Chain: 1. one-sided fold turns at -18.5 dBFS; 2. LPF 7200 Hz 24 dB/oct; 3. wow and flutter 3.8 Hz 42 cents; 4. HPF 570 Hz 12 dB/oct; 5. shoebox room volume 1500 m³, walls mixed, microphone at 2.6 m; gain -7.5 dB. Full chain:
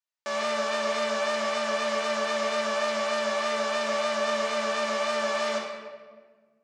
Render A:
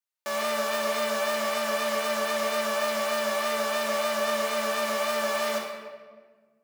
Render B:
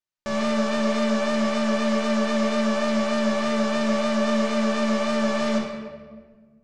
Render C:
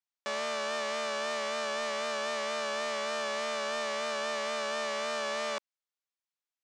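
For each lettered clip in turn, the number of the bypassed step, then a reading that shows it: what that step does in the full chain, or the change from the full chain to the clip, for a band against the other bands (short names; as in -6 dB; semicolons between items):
2, 8 kHz band +3.0 dB; 4, 250 Hz band +16.5 dB; 5, 250 Hz band -4.5 dB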